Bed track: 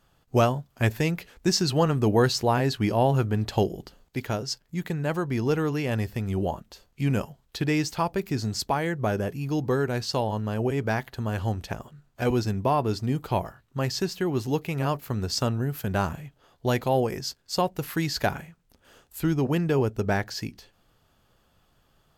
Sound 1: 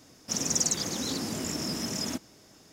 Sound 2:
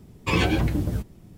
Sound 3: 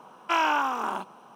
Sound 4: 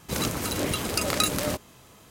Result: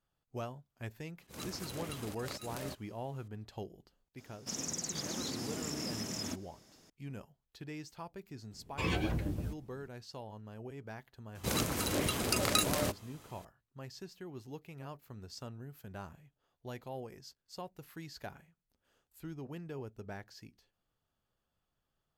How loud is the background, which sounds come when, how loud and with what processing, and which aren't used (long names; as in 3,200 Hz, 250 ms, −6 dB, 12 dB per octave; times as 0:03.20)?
bed track −20 dB
0:01.18: mix in 4 −16 dB + volume swells 144 ms
0:04.18: mix in 1 −6.5 dB + brickwall limiter −21.5 dBFS
0:08.51: mix in 2 −11.5 dB
0:11.35: mix in 4 −5 dB
not used: 3